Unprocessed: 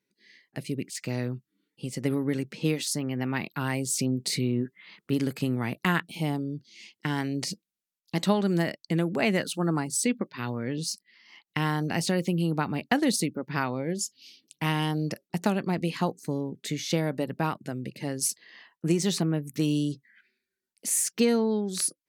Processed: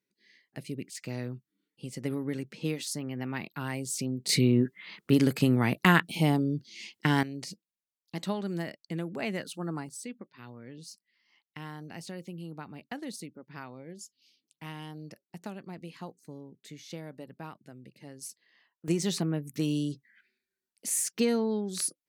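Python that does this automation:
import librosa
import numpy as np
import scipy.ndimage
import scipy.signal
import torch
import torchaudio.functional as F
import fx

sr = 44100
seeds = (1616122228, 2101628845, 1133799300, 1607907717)

y = fx.gain(x, sr, db=fx.steps((0.0, -5.5), (4.29, 4.0), (7.23, -8.5), (9.89, -15.0), (18.88, -3.5)))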